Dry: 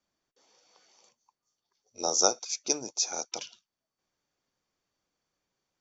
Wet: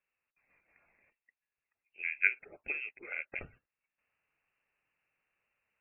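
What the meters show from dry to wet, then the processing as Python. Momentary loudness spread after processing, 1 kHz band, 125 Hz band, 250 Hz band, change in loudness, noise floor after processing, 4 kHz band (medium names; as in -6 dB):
14 LU, -21.0 dB, -4.5 dB, -17.0 dB, -6.5 dB, under -85 dBFS, under -30 dB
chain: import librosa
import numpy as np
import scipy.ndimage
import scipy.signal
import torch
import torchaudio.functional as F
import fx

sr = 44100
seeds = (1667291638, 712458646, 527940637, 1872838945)

p1 = scipy.signal.sosfilt(scipy.signal.butter(2, 87.0, 'highpass', fs=sr, output='sos'), x)
p2 = fx.level_steps(p1, sr, step_db=22)
p3 = p1 + F.gain(torch.from_numpy(p2), 1.0).numpy()
p4 = fx.freq_invert(p3, sr, carrier_hz=2900)
p5 = fx.rider(p4, sr, range_db=3, speed_s=2.0)
y = F.gain(torch.from_numpy(p5), -5.0).numpy()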